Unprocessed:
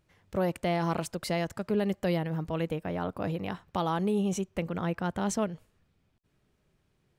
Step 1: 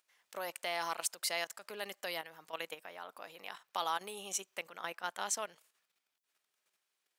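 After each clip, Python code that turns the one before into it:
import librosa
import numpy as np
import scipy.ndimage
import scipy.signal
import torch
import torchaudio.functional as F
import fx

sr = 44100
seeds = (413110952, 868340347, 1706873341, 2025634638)

y = fx.level_steps(x, sr, step_db=10)
y = scipy.signal.sosfilt(scipy.signal.butter(2, 900.0, 'highpass', fs=sr, output='sos'), y)
y = fx.high_shelf(y, sr, hz=4000.0, db=10.5)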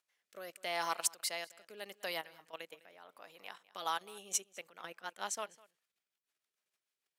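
y = fx.rotary_switch(x, sr, hz=0.8, then_hz=6.7, switch_at_s=3.48)
y = y + 10.0 ** (-18.0 / 20.0) * np.pad(y, (int(204 * sr / 1000.0), 0))[:len(y)]
y = fx.upward_expand(y, sr, threshold_db=-49.0, expansion=1.5)
y = F.gain(torch.from_numpy(y), 4.0).numpy()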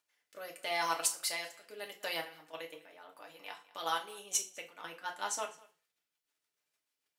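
y = fx.rev_fdn(x, sr, rt60_s=0.33, lf_ratio=0.9, hf_ratio=0.95, size_ms=20.0, drr_db=0.5)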